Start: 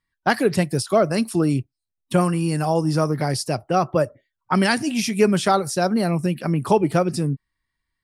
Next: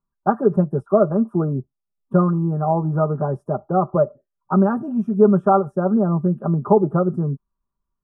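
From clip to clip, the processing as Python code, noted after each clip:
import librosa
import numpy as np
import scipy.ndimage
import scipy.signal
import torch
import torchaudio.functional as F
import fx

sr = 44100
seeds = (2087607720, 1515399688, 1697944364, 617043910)

y = scipy.signal.sosfilt(scipy.signal.ellip(4, 1.0, 40, 1300.0, 'lowpass', fs=sr, output='sos'), x)
y = y + 0.71 * np.pad(y, (int(5.0 * sr / 1000.0), 0))[:len(y)]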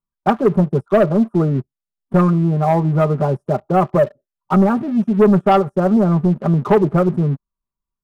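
y = fx.leveller(x, sr, passes=2)
y = y * 10.0 ** (-2.5 / 20.0)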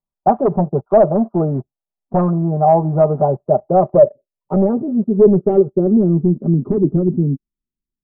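y = 10.0 ** (-9.0 / 20.0) * (np.abs((x / 10.0 ** (-9.0 / 20.0) + 3.0) % 4.0 - 2.0) - 1.0)
y = fx.filter_sweep_lowpass(y, sr, from_hz=730.0, to_hz=300.0, start_s=3.2, end_s=6.58, q=3.1)
y = y * 10.0 ** (-2.5 / 20.0)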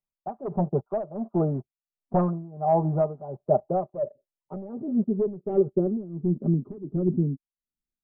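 y = x * (1.0 - 0.89 / 2.0 + 0.89 / 2.0 * np.cos(2.0 * np.pi * 1.4 * (np.arange(len(x)) / sr)))
y = y * 10.0 ** (-6.5 / 20.0)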